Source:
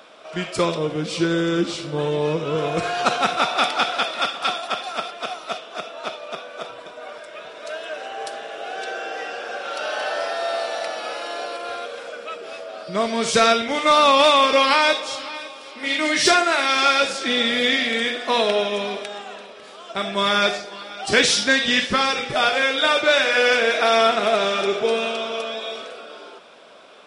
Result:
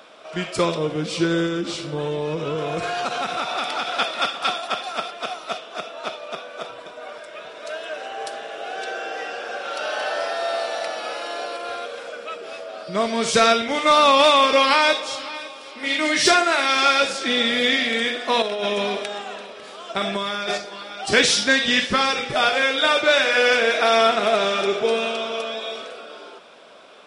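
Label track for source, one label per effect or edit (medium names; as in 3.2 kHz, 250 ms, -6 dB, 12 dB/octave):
1.460000	3.950000	compression, threshold -21 dBFS
18.420000	20.580000	compressor with a negative ratio -24 dBFS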